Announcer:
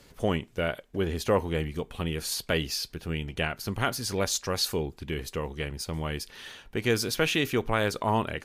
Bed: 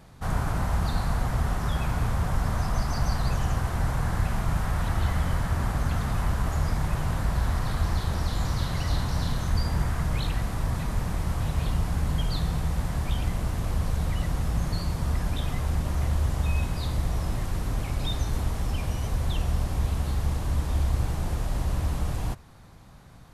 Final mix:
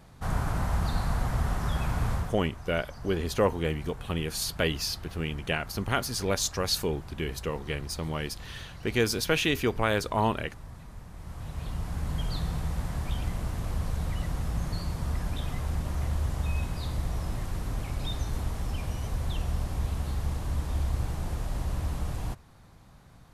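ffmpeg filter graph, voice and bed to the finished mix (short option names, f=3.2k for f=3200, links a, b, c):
-filter_complex "[0:a]adelay=2100,volume=0dB[a];[1:a]volume=11dB,afade=t=out:st=2.13:d=0.23:silence=0.177828,afade=t=in:st=11.12:d=1.17:silence=0.223872[b];[a][b]amix=inputs=2:normalize=0"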